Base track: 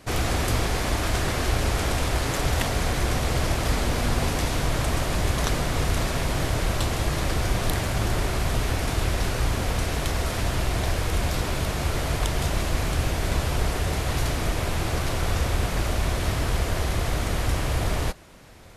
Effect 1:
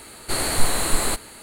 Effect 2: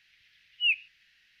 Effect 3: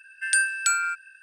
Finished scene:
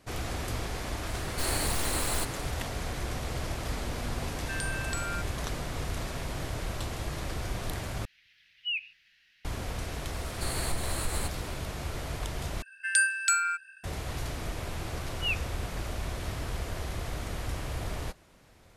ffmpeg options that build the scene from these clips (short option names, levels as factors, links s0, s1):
-filter_complex "[1:a]asplit=2[s0][s1];[3:a]asplit=2[s2][s3];[2:a]asplit=2[s4][s5];[0:a]volume=0.316[s6];[s0]aeval=exprs='0.112*(abs(mod(val(0)/0.112+3,4)-2)-1)':c=same[s7];[s2]acompressor=threshold=0.0501:ratio=6:attack=3.2:release=140:knee=1:detection=peak[s8];[s4]alimiter=level_in=1.26:limit=0.0631:level=0:latency=1:release=77,volume=0.794[s9];[s1]acompressor=threshold=0.0355:ratio=2:attack=88:release=90:knee=1:detection=peak[s10];[s6]asplit=3[s11][s12][s13];[s11]atrim=end=8.054[s14];[s9]atrim=end=1.4,asetpts=PTS-STARTPTS,volume=0.944[s15];[s12]atrim=start=9.446:end=12.624[s16];[s3]atrim=end=1.22,asetpts=PTS-STARTPTS,volume=0.75[s17];[s13]atrim=start=13.836[s18];[s7]atrim=end=1.42,asetpts=PTS-STARTPTS,volume=0.501,afade=t=in:d=0.004:c=hsin,afade=t=out:st=1.416:d=0.004:c=hsin,adelay=1090[s19];[s8]atrim=end=1.22,asetpts=PTS-STARTPTS,volume=0.447,afade=t=in:d=0.004:c=hsin,afade=t=out:st=1.216:d=0.004:c=hsin,adelay=4270[s20];[s10]atrim=end=1.42,asetpts=PTS-STARTPTS,volume=0.355,afade=t=in:d=0.004:c=hsin,afade=t=out:st=1.416:d=0.004:c=hsin,adelay=10120[s21];[s5]atrim=end=1.4,asetpts=PTS-STARTPTS,volume=0.501,afade=t=in:d=0.004:c=hsin,afade=t=out:st=1.396:d=0.004:c=hsin,adelay=14610[s22];[s14][s15]acrossfade=d=0.004:c1=hsin:c2=hsin[s23];[s23][s16]acrossfade=d=0.004:c1=hsin:c2=hsin[s24];[s24][s17]acrossfade=d=0.004:c1=hsin:c2=hsin[s25];[s25][s18]acrossfade=d=0.004:c1=hsin:c2=hsin[s26];[s26][s19][s20][s21][s22]amix=inputs=5:normalize=0"